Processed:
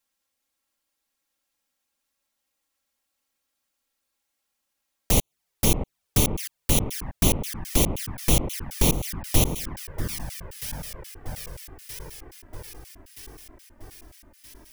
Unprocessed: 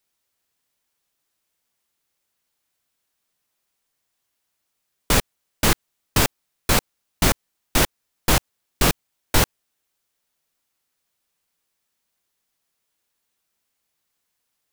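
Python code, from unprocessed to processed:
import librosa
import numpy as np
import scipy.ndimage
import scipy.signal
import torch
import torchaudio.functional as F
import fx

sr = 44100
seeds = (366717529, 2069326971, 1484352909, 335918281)

y = fx.bit_reversed(x, sr, seeds[0], block=32)
y = fx.echo_alternate(y, sr, ms=637, hz=1700.0, feedback_pct=76, wet_db=-8.0)
y = fx.env_flanger(y, sr, rest_ms=3.7, full_db=-19.0)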